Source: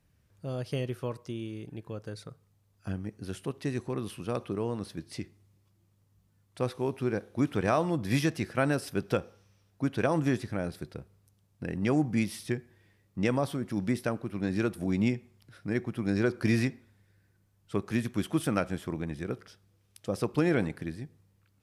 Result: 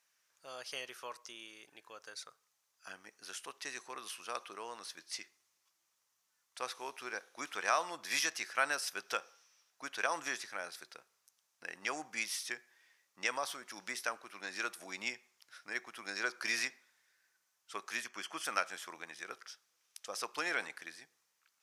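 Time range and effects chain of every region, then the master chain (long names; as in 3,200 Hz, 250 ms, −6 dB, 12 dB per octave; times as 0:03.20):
0:18.04–0:18.45: Butterworth band-reject 3,800 Hz, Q 5.4 + parametric band 12,000 Hz −11 dB 1.2 octaves
whole clip: Chebyshev high-pass filter 1,200 Hz, order 2; parametric band 6,100 Hz +8 dB 0.61 octaves; level +1 dB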